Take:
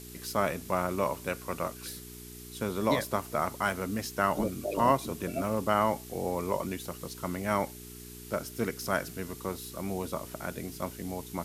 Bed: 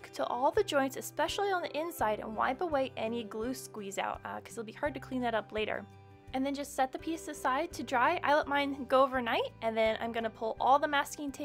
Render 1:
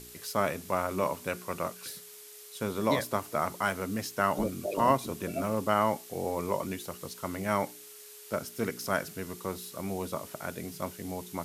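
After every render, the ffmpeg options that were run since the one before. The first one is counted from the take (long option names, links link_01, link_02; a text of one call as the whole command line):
ffmpeg -i in.wav -af "bandreject=frequency=60:width_type=h:width=4,bandreject=frequency=120:width_type=h:width=4,bandreject=frequency=180:width_type=h:width=4,bandreject=frequency=240:width_type=h:width=4,bandreject=frequency=300:width_type=h:width=4,bandreject=frequency=360:width_type=h:width=4" out.wav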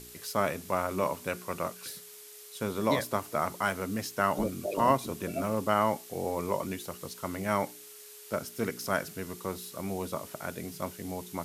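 ffmpeg -i in.wav -af anull out.wav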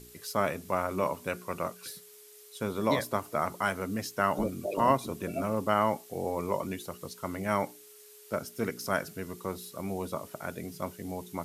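ffmpeg -i in.wav -af "afftdn=noise_reduction=6:noise_floor=-49" out.wav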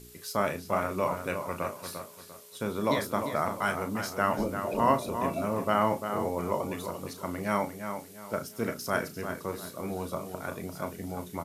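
ffmpeg -i in.wav -filter_complex "[0:a]asplit=2[link_01][link_02];[link_02]adelay=34,volume=-9dB[link_03];[link_01][link_03]amix=inputs=2:normalize=0,asplit=2[link_04][link_05];[link_05]adelay=347,lowpass=frequency=3600:poles=1,volume=-7.5dB,asplit=2[link_06][link_07];[link_07]adelay=347,lowpass=frequency=3600:poles=1,volume=0.33,asplit=2[link_08][link_09];[link_09]adelay=347,lowpass=frequency=3600:poles=1,volume=0.33,asplit=2[link_10][link_11];[link_11]adelay=347,lowpass=frequency=3600:poles=1,volume=0.33[link_12];[link_04][link_06][link_08][link_10][link_12]amix=inputs=5:normalize=0" out.wav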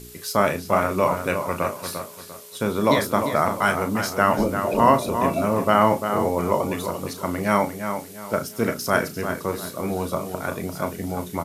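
ffmpeg -i in.wav -af "volume=8.5dB,alimiter=limit=-3dB:level=0:latency=1" out.wav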